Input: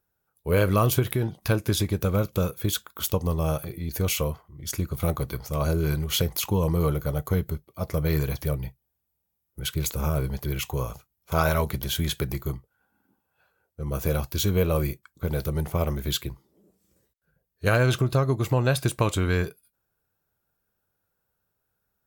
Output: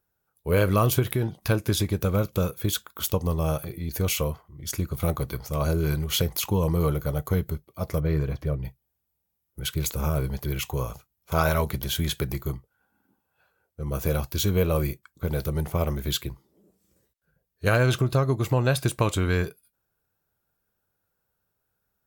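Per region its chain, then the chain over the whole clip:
8–8.65 LPF 1300 Hz 6 dB/oct + bell 840 Hz -6 dB 0.28 oct
whole clip: dry

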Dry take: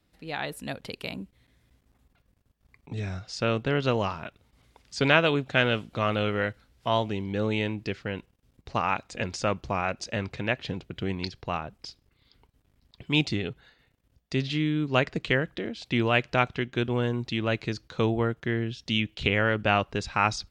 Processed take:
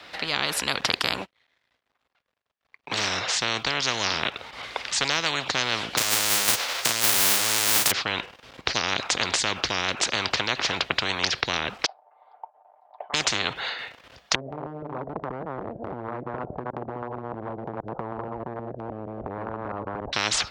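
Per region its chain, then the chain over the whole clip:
1.21–3.08 sample leveller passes 2 + upward expander 2.5:1, over -49 dBFS
5.97–7.9 spectral whitening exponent 0.1 + negative-ratio compressor -33 dBFS, ratio -0.5 + doubler 35 ms -5 dB
11.86–13.14 Butterworth band-pass 750 Hz, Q 3.1 + comb 6.7 ms, depth 53%
14.35–20.13 reverse delay 0.157 s, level -3 dB + steep low-pass 620 Hz + compressor, threshold -31 dBFS
whole clip: HPF 160 Hz 6 dB/oct; three-band isolator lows -19 dB, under 550 Hz, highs -21 dB, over 5200 Hz; spectral compressor 10:1; gain +3.5 dB

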